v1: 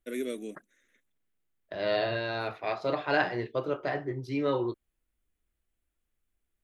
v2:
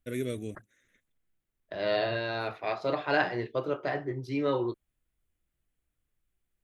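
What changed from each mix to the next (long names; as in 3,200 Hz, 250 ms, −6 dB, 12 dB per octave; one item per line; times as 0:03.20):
first voice: remove Butterworth high-pass 210 Hz 36 dB per octave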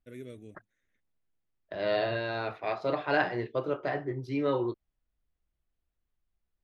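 first voice −11.0 dB
master: add high-shelf EQ 4,600 Hz −7 dB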